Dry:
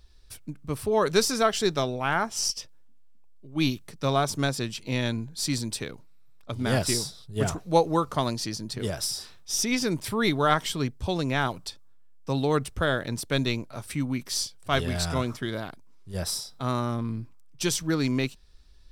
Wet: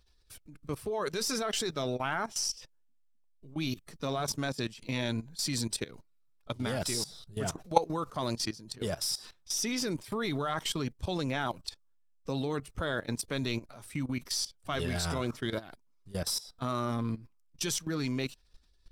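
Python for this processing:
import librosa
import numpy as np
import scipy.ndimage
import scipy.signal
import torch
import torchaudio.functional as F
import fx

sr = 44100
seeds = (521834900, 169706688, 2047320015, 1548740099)

y = fx.spec_quant(x, sr, step_db=15)
y = fx.low_shelf(y, sr, hz=230.0, db=-4.0)
y = fx.level_steps(y, sr, step_db=17)
y = y * librosa.db_to_amplitude(2.0)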